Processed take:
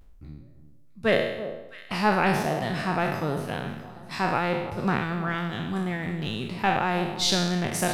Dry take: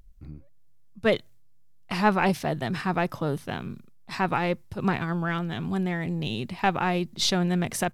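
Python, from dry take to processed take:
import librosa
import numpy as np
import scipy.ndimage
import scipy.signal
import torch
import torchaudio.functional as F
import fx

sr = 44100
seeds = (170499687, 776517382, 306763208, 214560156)

y = fx.spec_trails(x, sr, decay_s=0.87)
y = fx.echo_alternate(y, sr, ms=329, hz=1200.0, feedback_pct=58, wet_db=-12.5)
y = y * librosa.db_to_amplitude(-2.0)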